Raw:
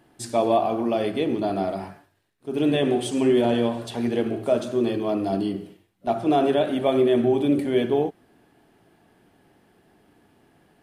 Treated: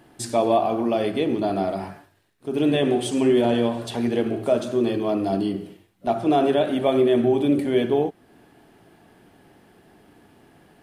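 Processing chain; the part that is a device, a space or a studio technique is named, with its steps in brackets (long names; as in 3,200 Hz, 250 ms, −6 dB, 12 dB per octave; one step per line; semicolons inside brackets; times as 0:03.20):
parallel compression (in parallel at −1 dB: downward compressor, threshold −37 dBFS, peak gain reduction 19.5 dB)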